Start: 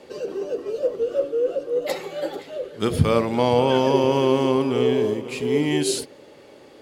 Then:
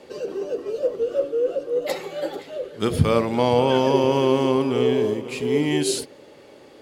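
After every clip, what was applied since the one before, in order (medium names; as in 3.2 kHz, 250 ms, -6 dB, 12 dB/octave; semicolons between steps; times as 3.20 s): no audible change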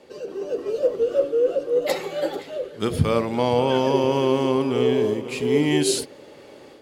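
level rider gain up to 7.5 dB; trim -4.5 dB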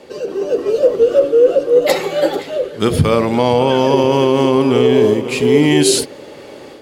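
loudness maximiser +11 dB; trim -1 dB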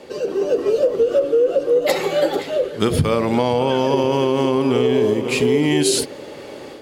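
compression, threshold -13 dBFS, peak gain reduction 7.5 dB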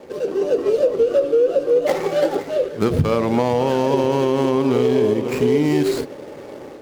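median filter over 15 samples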